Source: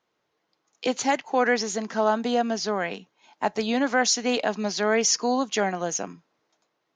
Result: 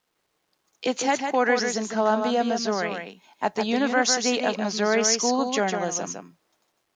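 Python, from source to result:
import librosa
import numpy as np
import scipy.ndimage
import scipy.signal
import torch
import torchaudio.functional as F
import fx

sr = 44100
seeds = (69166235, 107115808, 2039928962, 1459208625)

y = x + 10.0 ** (-6.0 / 20.0) * np.pad(x, (int(153 * sr / 1000.0), 0))[:len(x)]
y = fx.quant_dither(y, sr, seeds[0], bits=12, dither='none')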